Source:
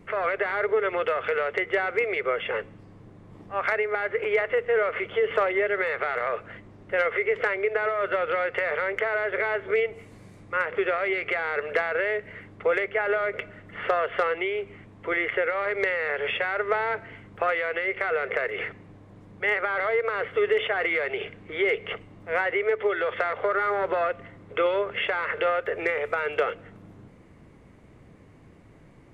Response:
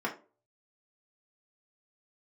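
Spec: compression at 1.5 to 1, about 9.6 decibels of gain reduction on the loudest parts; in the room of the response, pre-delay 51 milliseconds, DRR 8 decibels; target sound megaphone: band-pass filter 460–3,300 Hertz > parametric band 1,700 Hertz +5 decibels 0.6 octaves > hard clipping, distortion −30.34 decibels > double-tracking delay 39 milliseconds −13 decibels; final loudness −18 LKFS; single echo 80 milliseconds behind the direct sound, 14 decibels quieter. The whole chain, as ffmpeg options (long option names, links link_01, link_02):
-filter_complex "[0:a]acompressor=threshold=-47dB:ratio=1.5,aecho=1:1:80:0.2,asplit=2[link_01][link_02];[1:a]atrim=start_sample=2205,adelay=51[link_03];[link_02][link_03]afir=irnorm=-1:irlink=0,volume=-15dB[link_04];[link_01][link_04]amix=inputs=2:normalize=0,highpass=460,lowpass=3300,equalizer=frequency=1700:width_type=o:width=0.6:gain=5,asoftclip=type=hard:threshold=-22.5dB,asplit=2[link_05][link_06];[link_06]adelay=39,volume=-13dB[link_07];[link_05][link_07]amix=inputs=2:normalize=0,volume=15.5dB"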